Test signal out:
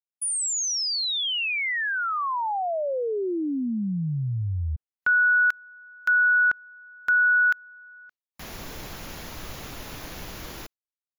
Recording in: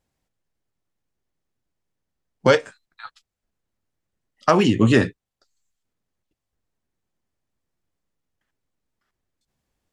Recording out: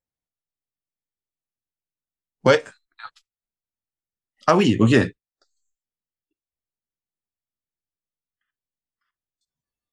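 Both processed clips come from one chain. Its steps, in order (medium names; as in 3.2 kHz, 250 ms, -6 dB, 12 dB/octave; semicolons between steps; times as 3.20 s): spectral noise reduction 18 dB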